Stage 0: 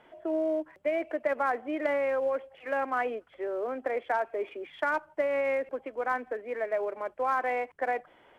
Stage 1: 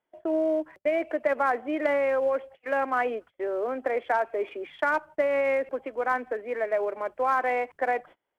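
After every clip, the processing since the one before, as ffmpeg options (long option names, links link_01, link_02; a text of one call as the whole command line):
ffmpeg -i in.wav -af "agate=range=-29dB:threshold=-48dB:ratio=16:detection=peak,volume=3.5dB" out.wav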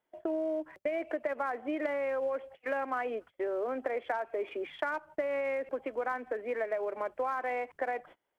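ffmpeg -i in.wav -af "acompressor=threshold=-30dB:ratio=6" out.wav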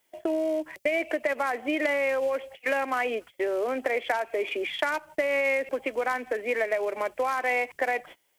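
ffmpeg -i in.wav -af "aexciter=amount=1.6:drive=9.6:freq=2000,volume=5.5dB" out.wav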